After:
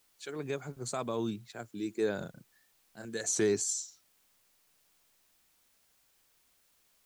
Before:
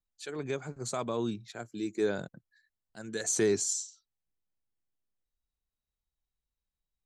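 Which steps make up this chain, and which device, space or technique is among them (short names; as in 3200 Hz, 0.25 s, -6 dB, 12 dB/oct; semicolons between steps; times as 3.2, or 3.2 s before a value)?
2.18–3.05 doubler 34 ms -3.5 dB; plain cassette with noise reduction switched in (mismatched tape noise reduction decoder only; wow and flutter; white noise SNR 32 dB); gain -1.5 dB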